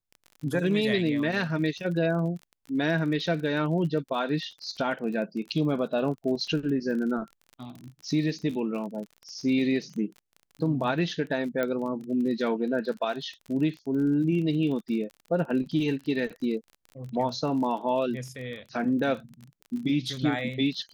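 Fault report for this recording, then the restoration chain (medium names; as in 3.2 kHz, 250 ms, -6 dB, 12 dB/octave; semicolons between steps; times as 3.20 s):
crackle 33 per s -36 dBFS
11.63 s: pop -16 dBFS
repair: de-click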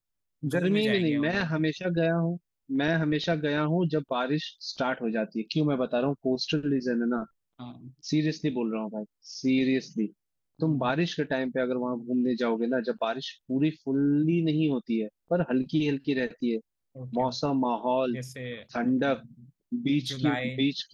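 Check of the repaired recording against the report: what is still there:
nothing left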